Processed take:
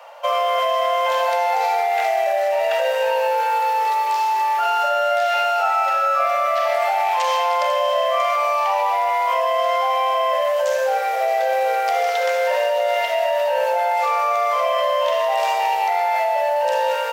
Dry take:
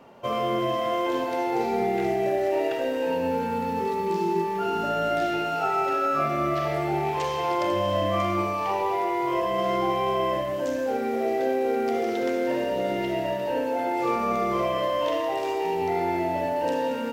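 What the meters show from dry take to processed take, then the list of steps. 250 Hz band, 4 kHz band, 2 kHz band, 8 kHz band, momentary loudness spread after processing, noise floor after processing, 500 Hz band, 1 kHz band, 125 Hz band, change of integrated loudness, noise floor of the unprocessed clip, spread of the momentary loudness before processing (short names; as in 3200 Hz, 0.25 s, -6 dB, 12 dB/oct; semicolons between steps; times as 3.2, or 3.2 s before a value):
under -30 dB, +9.0 dB, +9.0 dB, +9.5 dB, 1 LU, -21 dBFS, +5.0 dB, +9.0 dB, under -30 dB, +6.5 dB, -28 dBFS, 3 LU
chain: steep high-pass 530 Hz 72 dB/oct; in parallel at -2 dB: negative-ratio compressor -30 dBFS, ratio -0.5; on the sum: gain +5 dB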